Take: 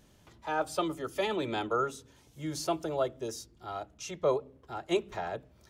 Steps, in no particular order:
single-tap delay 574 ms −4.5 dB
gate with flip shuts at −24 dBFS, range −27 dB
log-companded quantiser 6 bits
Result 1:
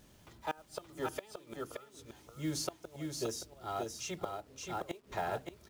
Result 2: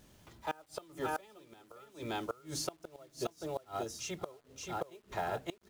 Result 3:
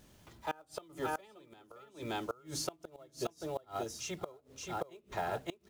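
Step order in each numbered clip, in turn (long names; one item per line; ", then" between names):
gate with flip, then log-companded quantiser, then single-tap delay
single-tap delay, then gate with flip, then log-companded quantiser
log-companded quantiser, then single-tap delay, then gate with flip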